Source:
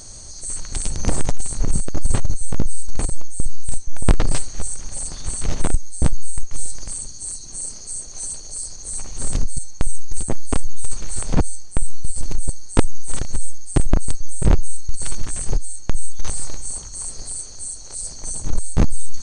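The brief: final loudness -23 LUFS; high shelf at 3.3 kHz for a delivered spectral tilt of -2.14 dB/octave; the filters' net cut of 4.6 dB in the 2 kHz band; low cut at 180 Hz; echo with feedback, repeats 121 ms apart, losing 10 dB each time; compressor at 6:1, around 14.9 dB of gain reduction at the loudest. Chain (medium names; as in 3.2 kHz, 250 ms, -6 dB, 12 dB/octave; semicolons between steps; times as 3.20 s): high-pass 180 Hz; peaking EQ 2 kHz -7.5 dB; treble shelf 3.3 kHz +4.5 dB; compression 6:1, threshold -29 dBFS; feedback delay 121 ms, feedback 32%, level -10 dB; trim +8 dB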